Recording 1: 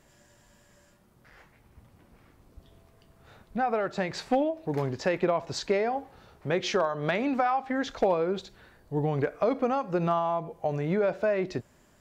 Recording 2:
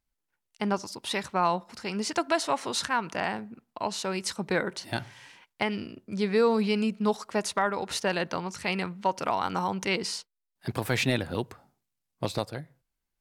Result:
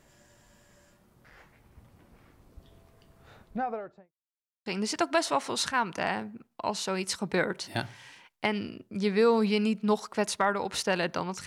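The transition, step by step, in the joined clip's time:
recording 1
0:03.31–0:04.13: fade out and dull
0:04.13–0:04.66: silence
0:04.66: continue with recording 2 from 0:01.83

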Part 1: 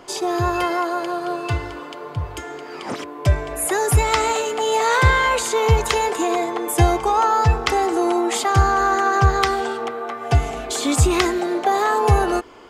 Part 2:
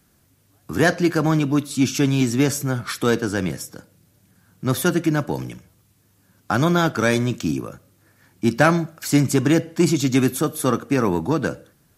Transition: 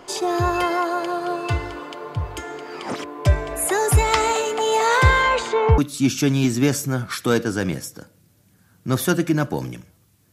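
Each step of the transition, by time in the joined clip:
part 1
0:05.22–0:05.78: low-pass filter 8,100 Hz → 1,300 Hz
0:05.78: continue with part 2 from 0:01.55

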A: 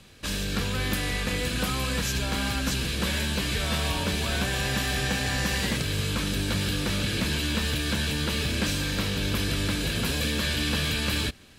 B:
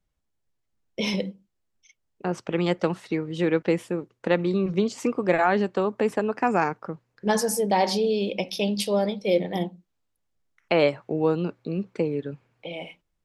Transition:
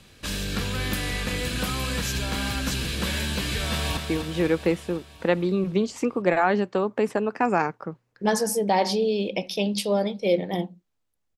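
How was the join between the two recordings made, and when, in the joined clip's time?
A
0:03.69–0:03.97: delay throw 250 ms, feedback 65%, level −6.5 dB
0:03.97: continue with B from 0:02.99

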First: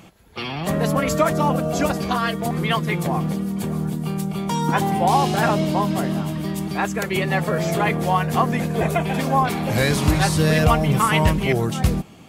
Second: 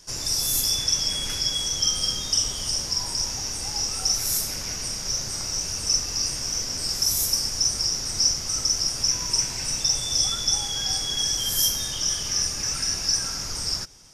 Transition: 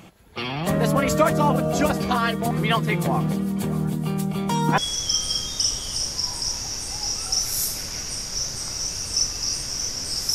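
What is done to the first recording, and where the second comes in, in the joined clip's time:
first
0:04.78: continue with second from 0:01.51

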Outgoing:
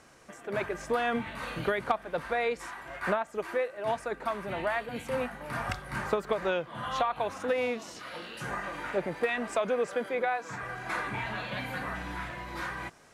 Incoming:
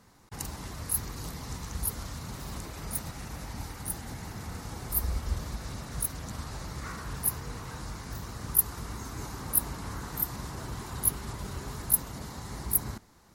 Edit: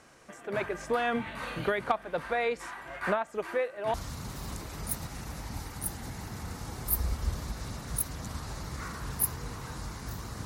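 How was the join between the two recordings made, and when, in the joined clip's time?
outgoing
0:03.94: continue with incoming from 0:01.98

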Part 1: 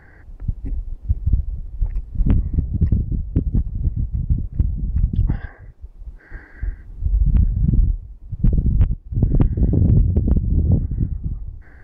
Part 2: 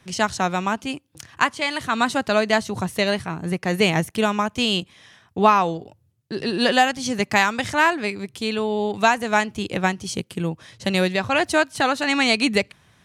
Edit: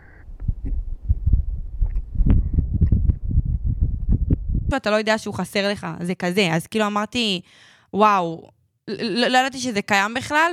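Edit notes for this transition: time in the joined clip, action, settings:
part 1
0:02.99–0:04.71: reverse
0:04.71: continue with part 2 from 0:02.14

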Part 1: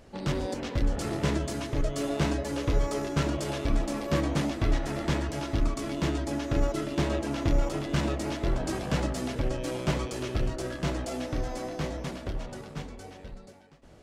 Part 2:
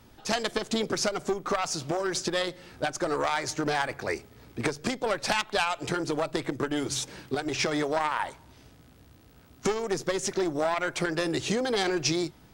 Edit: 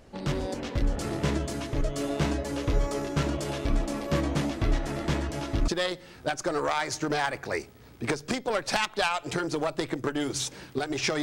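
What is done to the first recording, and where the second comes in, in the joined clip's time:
part 1
0:05.68: continue with part 2 from 0:02.24

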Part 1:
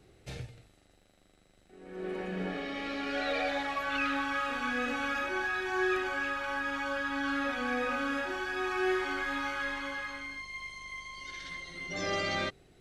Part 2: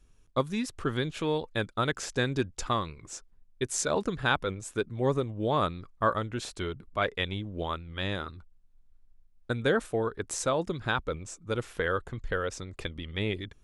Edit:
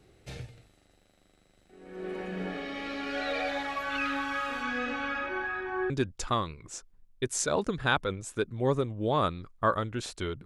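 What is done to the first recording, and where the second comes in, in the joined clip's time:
part 1
0:04.62–0:05.90: low-pass filter 7,600 Hz → 1,200 Hz
0:05.90: continue with part 2 from 0:02.29

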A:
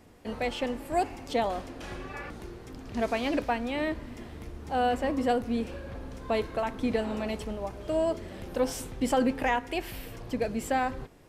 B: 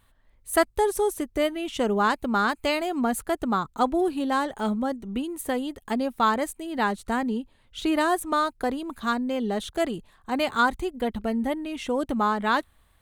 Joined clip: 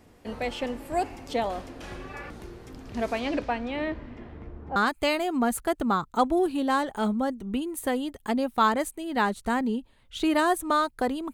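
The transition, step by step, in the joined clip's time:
A
0:03.19–0:04.76: low-pass filter 8,600 Hz → 1,200 Hz
0:04.76: continue with B from 0:02.38

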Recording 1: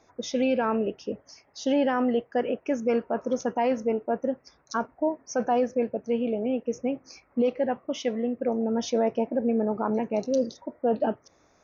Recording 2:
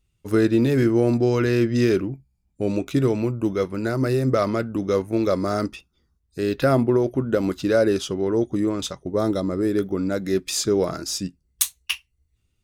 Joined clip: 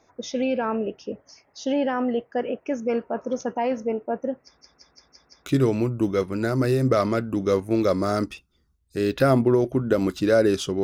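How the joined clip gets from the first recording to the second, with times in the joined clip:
recording 1
0:04.44: stutter in place 0.17 s, 6 plays
0:05.46: continue with recording 2 from 0:02.88

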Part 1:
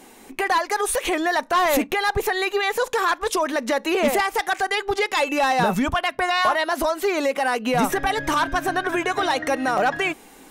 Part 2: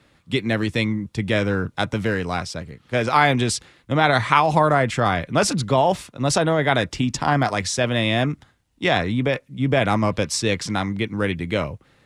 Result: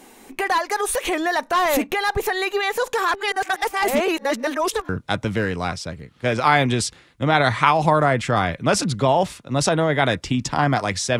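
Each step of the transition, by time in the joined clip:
part 1
0:03.14–0:04.89: reverse
0:04.89: continue with part 2 from 0:01.58

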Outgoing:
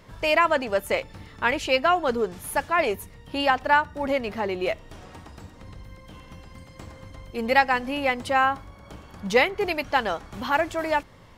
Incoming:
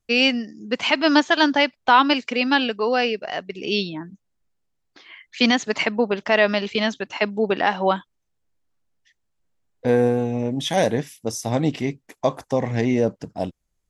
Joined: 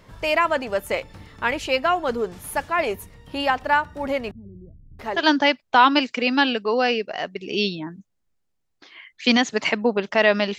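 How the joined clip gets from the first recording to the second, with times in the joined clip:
outgoing
0:04.31–0:05.23: multiband delay without the direct sound lows, highs 680 ms, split 210 Hz
0:05.18: continue with incoming from 0:01.32, crossfade 0.10 s

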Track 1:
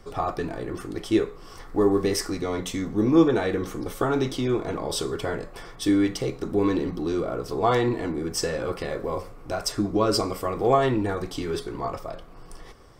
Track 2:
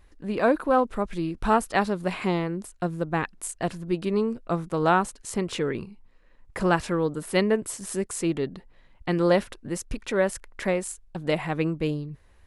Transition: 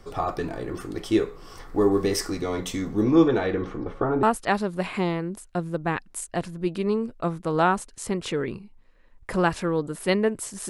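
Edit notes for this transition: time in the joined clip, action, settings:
track 1
0:03.03–0:04.23: low-pass filter 8,600 Hz → 1,000 Hz
0:04.23: continue with track 2 from 0:01.50

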